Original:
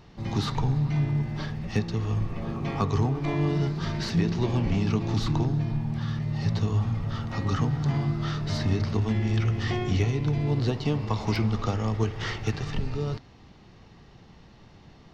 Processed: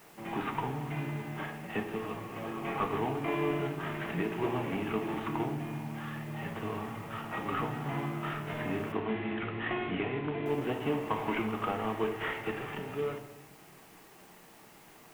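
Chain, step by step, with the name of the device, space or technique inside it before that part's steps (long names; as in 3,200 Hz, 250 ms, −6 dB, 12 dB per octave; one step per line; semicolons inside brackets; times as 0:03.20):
army field radio (band-pass filter 340–3,100 Hz; variable-slope delta modulation 16 kbit/s; white noise bed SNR 25 dB)
notch filter 510 Hz, Q 14
0:08.92–0:10.46: Butterworth low-pass 4,000 Hz 72 dB per octave
rectangular room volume 350 cubic metres, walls mixed, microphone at 0.6 metres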